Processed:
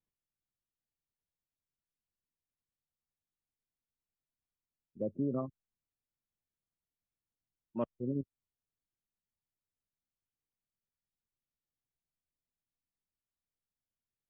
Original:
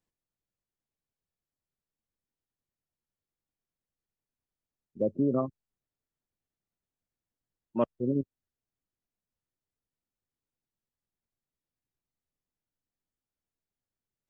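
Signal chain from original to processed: tone controls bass +4 dB, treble -7 dB; gain -8.5 dB

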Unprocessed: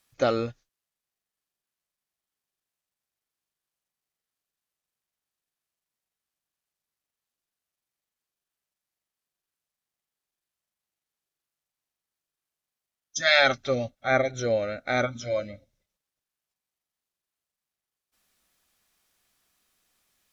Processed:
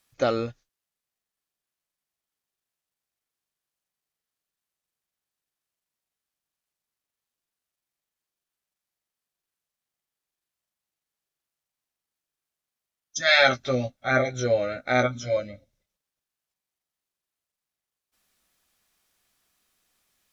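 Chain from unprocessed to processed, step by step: 13.27–15.37 doubler 16 ms -3.5 dB

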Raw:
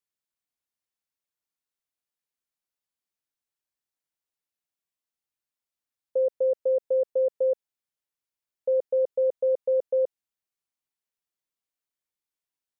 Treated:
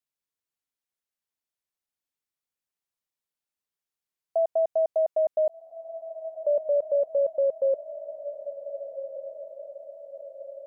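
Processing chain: speed glide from 156% -> 84%; on a send: diffused feedback echo 1.541 s, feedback 55%, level -12 dB

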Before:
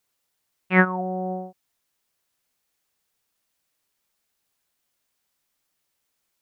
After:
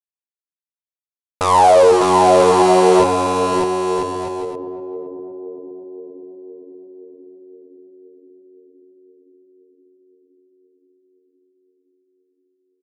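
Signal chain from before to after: overdrive pedal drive 30 dB, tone 2200 Hz, clips at -6 dBFS; Schmitt trigger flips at -30.5 dBFS; band shelf 1300 Hz +15 dB; sample gate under -23 dBFS; narrowing echo 0.259 s, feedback 77%, band-pass 620 Hz, level -9 dB; speed mistake 15 ips tape played at 7.5 ips; bouncing-ball echo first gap 0.6 s, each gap 0.65×, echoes 5; gain +1.5 dB

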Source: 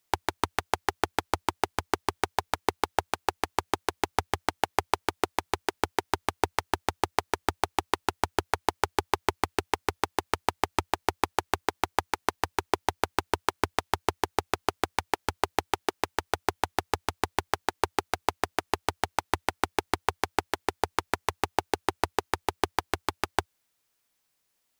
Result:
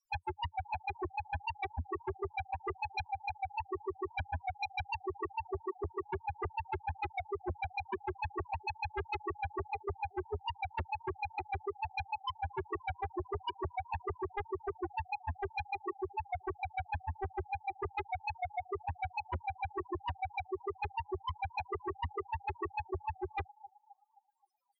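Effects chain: narrowing echo 0.263 s, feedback 45%, band-pass 910 Hz, level -22 dB; loudest bins only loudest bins 2; sine folder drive 10 dB, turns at -26.5 dBFS; gain -4 dB

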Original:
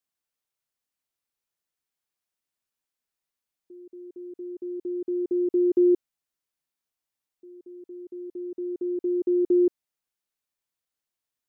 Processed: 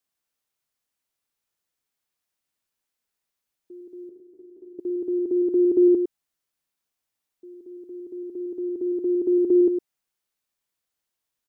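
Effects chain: 4.09–4.79 resonator 76 Hz, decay 0.28 s, harmonics all, mix 100%; on a send: echo 0.108 s -8.5 dB; on the sum: gain +3.5 dB

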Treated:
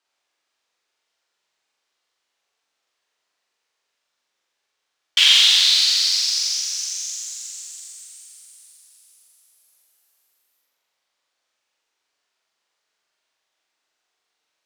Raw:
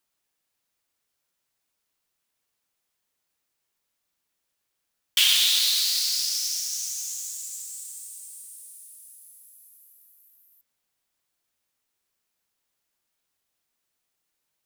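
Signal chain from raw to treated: three-band isolator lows -17 dB, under 350 Hz, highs -22 dB, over 6800 Hz; on a send: flutter echo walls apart 7.5 m, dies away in 0.97 s; on the sum: gain +5 dB

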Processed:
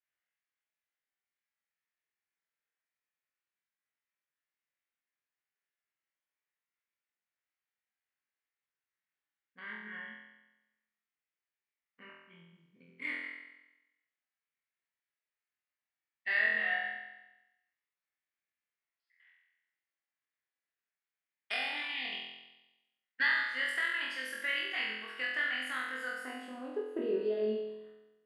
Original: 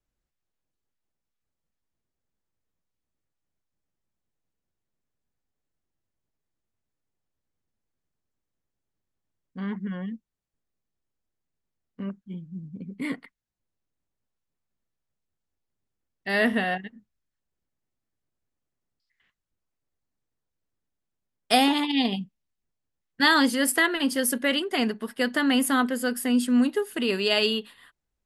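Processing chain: compressor, threshold -28 dBFS, peak gain reduction 12.5 dB; band-pass sweep 2000 Hz -> 340 Hz, 25.92–27.11; 22.03–23.69 transient shaper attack +5 dB, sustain -8 dB; flutter echo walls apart 4 m, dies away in 1 s

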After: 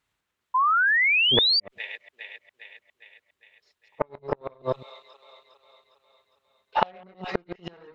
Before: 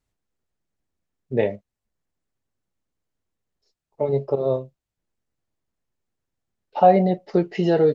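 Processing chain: reverse delay 0.105 s, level -3 dB; HPF 46 Hz 12 dB/oct; thin delay 0.407 s, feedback 54%, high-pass 2500 Hz, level -4.5 dB; added harmonics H 8 -25 dB, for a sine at -2.5 dBFS; low shelf 280 Hz -6 dB; flipped gate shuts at -12 dBFS, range -35 dB; band shelf 1900 Hz +8 dB 2.3 oct; painted sound rise, 0.54–1.6, 990–4800 Hz -22 dBFS; gain +1.5 dB

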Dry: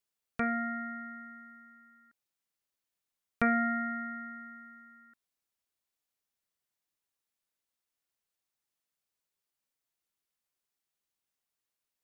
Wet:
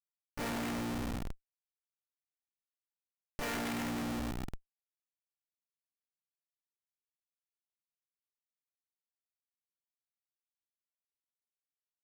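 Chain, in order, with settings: spectral limiter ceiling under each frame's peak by 17 dB; non-linear reverb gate 0.26 s flat, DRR -3.5 dB; harmoniser -12 st -11 dB, +4 st -3 dB; Schmitt trigger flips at -29 dBFS; gain -2.5 dB

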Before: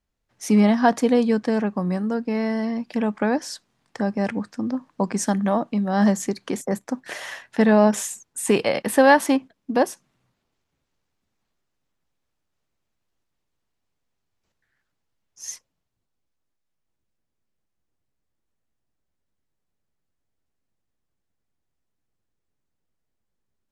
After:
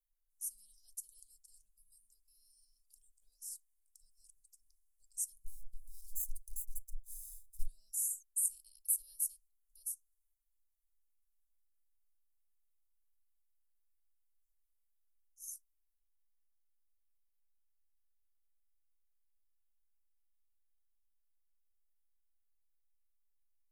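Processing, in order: 5.44–7.66 minimum comb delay 0.8 ms; inverse Chebyshev band-stop 140–2100 Hz, stop band 80 dB; gain +2.5 dB

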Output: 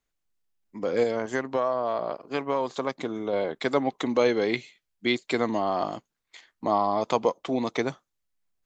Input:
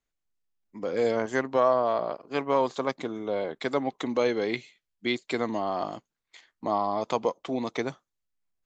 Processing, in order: 1.03–3.33 compressor 2.5:1, threshold -28 dBFS, peak gain reduction 7.5 dB; gain +3 dB

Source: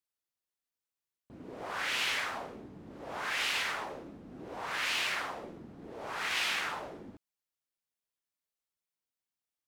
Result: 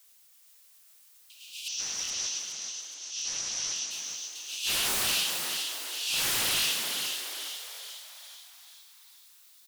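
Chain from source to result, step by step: steep high-pass 2600 Hz 96 dB/oct; high shelf 4200 Hz +4.5 dB; limiter -29 dBFS, peak gain reduction 8.5 dB; rotary speaker horn 7.5 Hz, later 0.6 Hz, at 4.31; sine folder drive 17 dB, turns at -28 dBFS; added noise blue -63 dBFS; 1.68–3.91 ladder low-pass 6100 Hz, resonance 85%; frequency-shifting echo 0.42 s, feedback 54%, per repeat +130 Hz, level -5 dB; crackling interface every 0.57 s, samples 1024, repeat, from 0.89; gain +3 dB

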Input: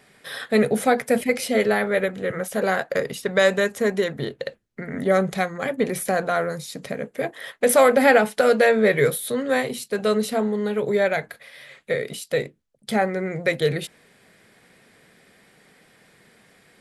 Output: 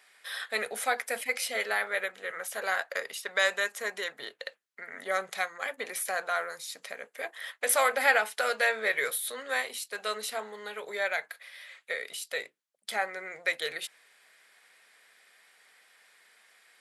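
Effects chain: HPF 1000 Hz 12 dB/oct; gain -3 dB

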